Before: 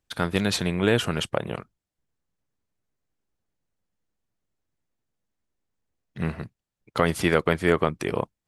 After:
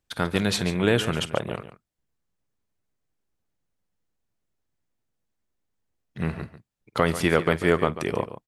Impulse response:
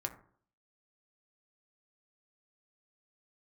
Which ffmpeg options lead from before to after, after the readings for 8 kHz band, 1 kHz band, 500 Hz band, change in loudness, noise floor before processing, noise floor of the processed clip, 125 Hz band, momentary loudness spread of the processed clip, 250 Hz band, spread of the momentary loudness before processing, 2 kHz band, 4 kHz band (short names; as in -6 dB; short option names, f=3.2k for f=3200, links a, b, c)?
+0.5 dB, +0.5 dB, +0.5 dB, +0.5 dB, under -85 dBFS, -80 dBFS, +0.5 dB, 12 LU, 0.0 dB, 12 LU, 0.0 dB, +0.5 dB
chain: -af "aecho=1:1:49|142:0.106|0.224"